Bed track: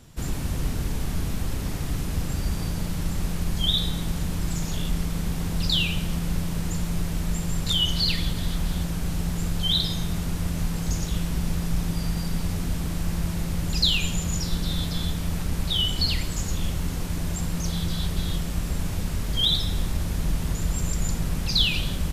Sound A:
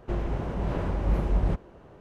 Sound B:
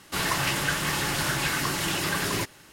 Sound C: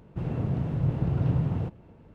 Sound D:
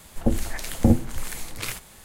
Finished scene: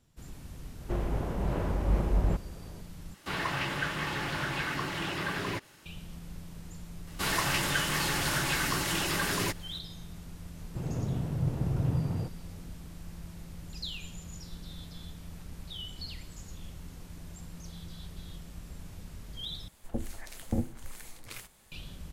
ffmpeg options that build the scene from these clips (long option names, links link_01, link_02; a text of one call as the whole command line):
ffmpeg -i bed.wav -i cue0.wav -i cue1.wav -i cue2.wav -i cue3.wav -filter_complex "[2:a]asplit=2[link_01][link_02];[0:a]volume=-17.5dB[link_03];[link_01]acrossover=split=3900[link_04][link_05];[link_05]acompressor=threshold=-47dB:ratio=4:attack=1:release=60[link_06];[link_04][link_06]amix=inputs=2:normalize=0[link_07];[link_03]asplit=3[link_08][link_09][link_10];[link_08]atrim=end=3.144[link_11];[link_07]atrim=end=2.72,asetpts=PTS-STARTPTS,volume=-5dB[link_12];[link_09]atrim=start=5.856:end=19.684[link_13];[4:a]atrim=end=2.04,asetpts=PTS-STARTPTS,volume=-13dB[link_14];[link_10]atrim=start=21.716[link_15];[1:a]atrim=end=2,asetpts=PTS-STARTPTS,volume=-2dB,afade=type=in:duration=0.004:curve=hsin,afade=type=out:start_time=1.996:duration=0.004:curve=hsin,adelay=810[link_16];[link_02]atrim=end=2.72,asetpts=PTS-STARTPTS,volume=-3dB,afade=type=in:duration=0.004:curve=hsin,afade=type=out:start_time=2.716:duration=0.004:curve=hsin,adelay=7070[link_17];[3:a]atrim=end=2.14,asetpts=PTS-STARTPTS,volume=-4dB,afade=type=in:duration=0.004:curve=hsin,afade=type=out:start_time=2.136:duration=0.004:curve=hsin,adelay=10590[link_18];[link_11][link_12]acrossfade=duration=0.004:curve1=hsin:curve2=hsin[link_19];[link_19][link_13]acrossfade=duration=0.004:curve1=hsin:curve2=hsin[link_20];[link_20][link_14]acrossfade=duration=0.004:curve1=hsin:curve2=hsin[link_21];[link_21][link_15]acrossfade=duration=0.004:curve1=hsin:curve2=hsin[link_22];[link_22][link_16][link_17][link_18]amix=inputs=4:normalize=0" out.wav